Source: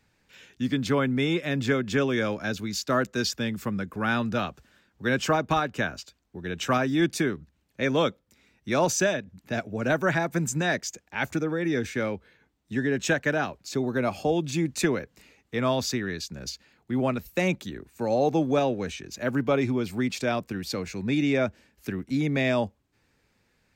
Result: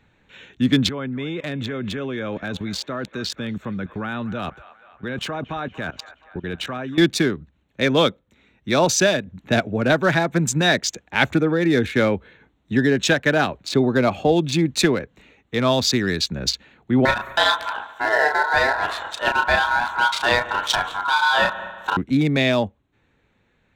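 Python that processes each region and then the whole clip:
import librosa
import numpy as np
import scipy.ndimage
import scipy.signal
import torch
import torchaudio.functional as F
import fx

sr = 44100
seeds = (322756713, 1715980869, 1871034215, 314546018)

y = fx.chain(x, sr, fx.level_steps(step_db=19),
    fx.echo_wet_bandpass(ms=236, feedback_pct=62, hz=1400.0, wet_db=-15.0), at=(0.89, 6.98))
y = fx.chain(y, sr, fx.ring_mod(carrier_hz=1200.0),
    fx.doubler(ms=33.0, db=-4.0),
    fx.echo_heads(ms=72, heads='all three', feedback_pct=44, wet_db=-21), at=(17.05, 21.97))
y = fx.wiener(y, sr, points=9)
y = fx.peak_eq(y, sr, hz=3900.0, db=9.5, octaves=0.65)
y = fx.rider(y, sr, range_db=3, speed_s=0.5)
y = y * 10.0 ** (8.0 / 20.0)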